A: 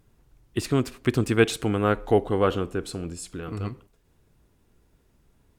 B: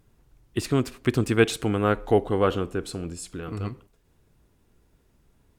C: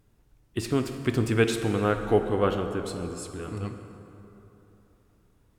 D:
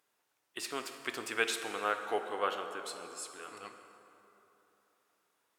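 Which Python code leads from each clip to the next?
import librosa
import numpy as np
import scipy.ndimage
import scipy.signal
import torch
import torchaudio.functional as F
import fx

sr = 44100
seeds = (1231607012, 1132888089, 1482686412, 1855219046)

y1 = x
y2 = fx.rev_plate(y1, sr, seeds[0], rt60_s=3.3, hf_ratio=0.55, predelay_ms=0, drr_db=6.0)
y2 = y2 * librosa.db_to_amplitude(-3.0)
y3 = scipy.signal.sosfilt(scipy.signal.butter(2, 790.0, 'highpass', fs=sr, output='sos'), y2)
y3 = y3 * librosa.db_to_amplitude(-2.0)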